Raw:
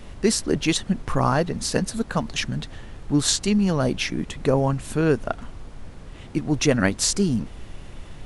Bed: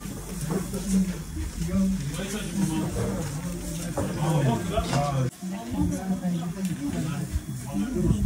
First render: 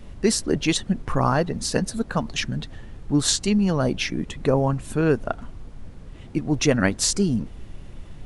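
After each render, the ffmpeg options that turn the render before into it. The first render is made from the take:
-af "afftdn=nr=6:nf=-41"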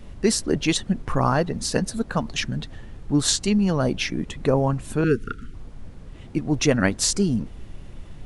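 -filter_complex "[0:a]asettb=1/sr,asplit=3[a][b][c];[a]atrim=end=5.044[d];[b]atrim=start=5.04:end=5.54,asetpts=PTS-STARTPTS,afade=t=in:d=0.004:c=qsin,afade=t=out:st=0.496:d=0.004:c=qsin,asuperstop=centerf=760:order=20:qfactor=1[e];[c]atrim=start=5.536[f];[d][e]acrossfade=d=0.004:c1=hsin:c2=qsin[g];[g][f]acrossfade=d=0.004:c1=qsin:c2=hsin"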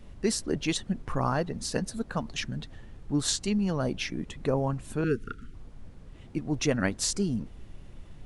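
-af "volume=-7dB"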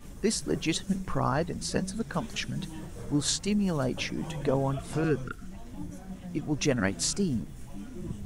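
-filter_complex "[1:a]volume=-14.5dB[a];[0:a][a]amix=inputs=2:normalize=0"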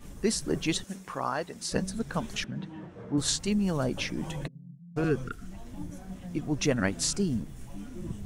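-filter_complex "[0:a]asettb=1/sr,asplit=3[a][b][c];[a]atrim=end=0.844[d];[b]atrim=start=0.84:end=1.72,asetpts=PTS-STARTPTS,afade=t=in:d=0.004:c=qsin,afade=t=out:st=0.876:d=0.004:c=qsin,highpass=f=600:p=1[e];[c]atrim=start=1.716[f];[d][e]acrossfade=d=0.004:c1=hsin:c2=qsin[g];[g][f]acrossfade=d=0.004:c1=qsin:c2=hsin,asettb=1/sr,asplit=3[h][i][j];[h]atrim=end=2.444[k];[i]atrim=start=2.44:end=3.18,asetpts=PTS-STARTPTS,afade=t=in:d=0.004:c=qsin,afade=t=out:st=0.736:d=0.004:c=qsin,highpass=140,lowpass=2.2k[l];[j]atrim=start=3.176[m];[k][l]acrossfade=d=0.004:c1=hsin:c2=qsin[n];[n][m]acrossfade=d=0.004:c1=qsin:c2=hsin,asplit=3[o][p][q];[o]afade=t=out:st=4.46:d=0.02[r];[p]asuperpass=centerf=170:order=4:qfactor=6.8,afade=t=in:st=4.46:d=0.02,afade=t=out:st=4.96:d=0.02[s];[q]afade=t=in:st=4.96:d=0.02[t];[r][s][t]amix=inputs=3:normalize=0"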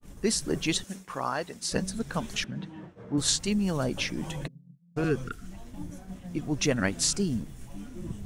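-af "agate=range=-33dB:threshold=-40dB:ratio=3:detection=peak,adynamicequalizer=threshold=0.00794:dfrequency=1800:dqfactor=0.7:tfrequency=1800:tqfactor=0.7:attack=5:release=100:ratio=0.375:range=1.5:mode=boostabove:tftype=highshelf"

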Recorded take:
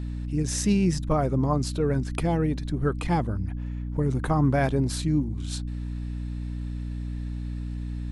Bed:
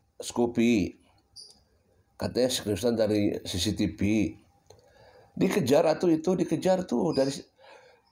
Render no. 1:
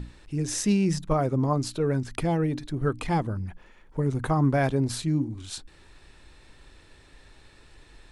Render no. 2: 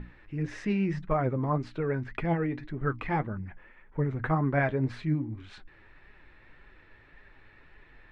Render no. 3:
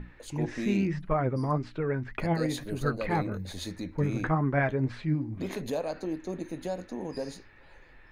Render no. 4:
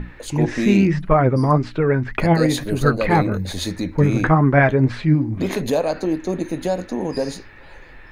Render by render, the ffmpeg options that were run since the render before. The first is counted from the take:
-af "bandreject=f=60:t=h:w=6,bandreject=f=120:t=h:w=6,bandreject=f=180:t=h:w=6,bandreject=f=240:t=h:w=6,bandreject=f=300:t=h:w=6"
-af "flanger=delay=4.7:depth=4.9:regen=53:speed=1.8:shape=sinusoidal,lowpass=f=2k:t=q:w=2.3"
-filter_complex "[1:a]volume=-10dB[a];[0:a][a]amix=inputs=2:normalize=0"
-af "volume=12dB,alimiter=limit=-3dB:level=0:latency=1"

